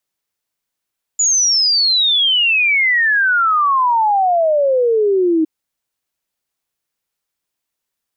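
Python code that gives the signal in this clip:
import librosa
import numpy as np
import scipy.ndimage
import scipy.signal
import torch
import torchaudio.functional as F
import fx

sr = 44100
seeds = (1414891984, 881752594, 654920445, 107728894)

y = fx.ess(sr, length_s=4.26, from_hz=7000.0, to_hz=310.0, level_db=-11.0)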